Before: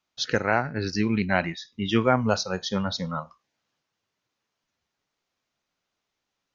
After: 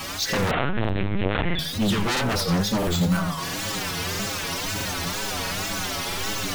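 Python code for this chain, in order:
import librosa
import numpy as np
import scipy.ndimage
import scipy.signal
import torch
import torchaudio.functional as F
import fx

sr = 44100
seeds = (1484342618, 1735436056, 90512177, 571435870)

p1 = x + 0.5 * 10.0 ** (-28.0 / 20.0) * np.sign(x)
p2 = fx.low_shelf(p1, sr, hz=130.0, db=9.5)
p3 = fx.stiff_resonator(p2, sr, f0_hz=91.0, decay_s=0.24, stiffness=0.008)
p4 = p3 + fx.echo_feedback(p3, sr, ms=84, feedback_pct=40, wet_db=-11.0, dry=0)
p5 = 10.0 ** (-28.0 / 20.0) * (np.abs((p4 / 10.0 ** (-28.0 / 20.0) + 3.0) % 4.0 - 2.0) - 1.0)
p6 = fx.dynamic_eq(p5, sr, hz=180.0, q=2.0, threshold_db=-50.0, ratio=4.0, max_db=6)
p7 = fx.rider(p6, sr, range_db=10, speed_s=0.5)
p8 = p6 + (p7 * 10.0 ** (1.0 / 20.0))
p9 = fx.wow_flutter(p8, sr, seeds[0], rate_hz=2.1, depth_cents=150.0)
p10 = fx.lpc_vocoder(p9, sr, seeds[1], excitation='pitch_kept', order=10, at=(0.51, 1.59))
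p11 = fx.resample_bad(p10, sr, factor=4, down='none', up='hold', at=(2.78, 3.18))
p12 = fx.buffer_crackle(p11, sr, first_s=0.8, period_s=0.66, block=2048, kind='repeat')
y = p12 * 10.0 ** (3.5 / 20.0)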